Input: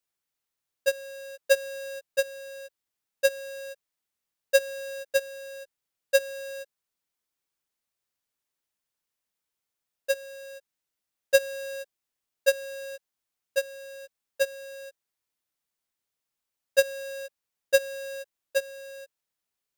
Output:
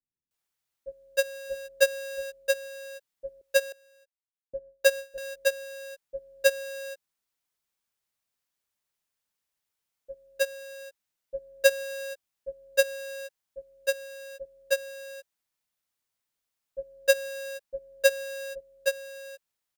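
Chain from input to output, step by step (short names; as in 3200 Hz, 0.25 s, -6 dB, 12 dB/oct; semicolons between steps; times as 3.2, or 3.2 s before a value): 3.41–4.87 gate with hold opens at -29 dBFS; bands offset in time lows, highs 0.31 s, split 360 Hz; gain +1 dB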